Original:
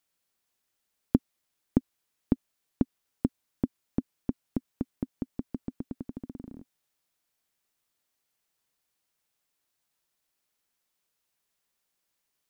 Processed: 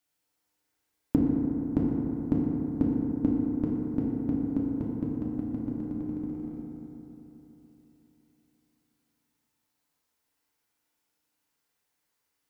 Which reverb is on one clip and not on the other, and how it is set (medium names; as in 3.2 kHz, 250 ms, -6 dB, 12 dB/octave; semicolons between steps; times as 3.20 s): FDN reverb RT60 3.6 s, high-frequency decay 0.3×, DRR -4.5 dB; trim -3 dB